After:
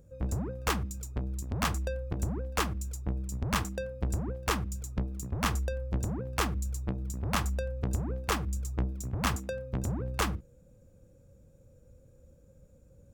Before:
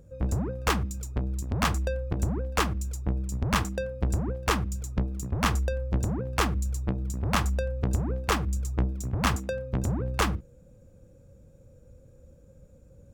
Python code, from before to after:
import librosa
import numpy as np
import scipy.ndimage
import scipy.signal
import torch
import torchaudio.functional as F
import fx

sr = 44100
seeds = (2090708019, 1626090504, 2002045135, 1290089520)

y = fx.high_shelf(x, sr, hz=7500.0, db=5.0)
y = y * librosa.db_to_amplitude(-4.5)